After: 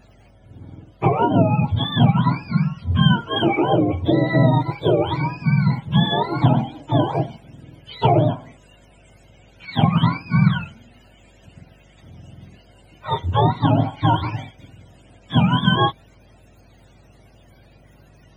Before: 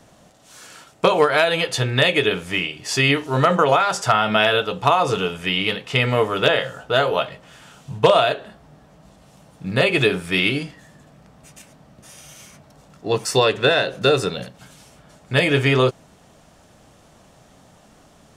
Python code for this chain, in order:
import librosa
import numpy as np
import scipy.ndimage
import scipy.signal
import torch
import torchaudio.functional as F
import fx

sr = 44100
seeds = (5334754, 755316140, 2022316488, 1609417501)

y = fx.octave_mirror(x, sr, pivot_hz=650.0)
y = fx.add_hum(y, sr, base_hz=50, snr_db=33)
y = fx.band_widen(y, sr, depth_pct=40, at=(9.65, 10.61))